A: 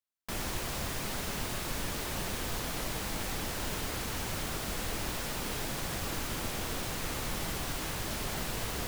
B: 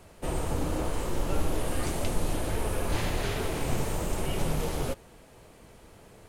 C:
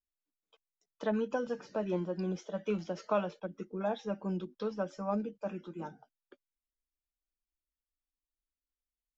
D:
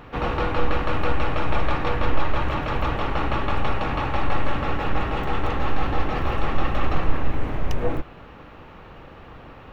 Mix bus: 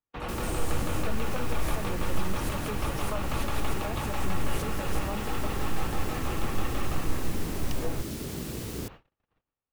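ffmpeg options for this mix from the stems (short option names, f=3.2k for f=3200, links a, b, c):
-filter_complex "[0:a]highpass=60,lowshelf=f=540:t=q:w=1.5:g=13,volume=-9.5dB[a];[1:a]adelay=200,volume=-2dB[b];[2:a]volume=-2dB,asplit=2[c][d];[3:a]dynaudnorm=f=210:g=5:m=5dB,volume=-11.5dB[e];[d]apad=whole_len=286172[f];[b][f]sidechaincompress=threshold=-51dB:ratio=8:attack=16:release=115[g];[a][g][c][e]amix=inputs=4:normalize=0,agate=range=-43dB:threshold=-44dB:ratio=16:detection=peak,highshelf=f=3.1k:g=8,acrossover=split=130[h][i];[i]acompressor=threshold=-30dB:ratio=6[j];[h][j]amix=inputs=2:normalize=0"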